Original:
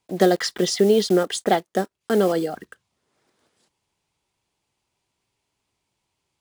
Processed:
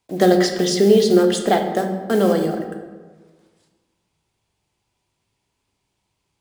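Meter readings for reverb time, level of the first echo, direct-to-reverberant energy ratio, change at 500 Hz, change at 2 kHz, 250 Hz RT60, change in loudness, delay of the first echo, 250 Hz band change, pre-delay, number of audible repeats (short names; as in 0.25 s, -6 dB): 1.4 s, none, 4.5 dB, +3.5 dB, +2.5 dB, 1.5 s, +3.5 dB, none, +5.0 dB, 10 ms, none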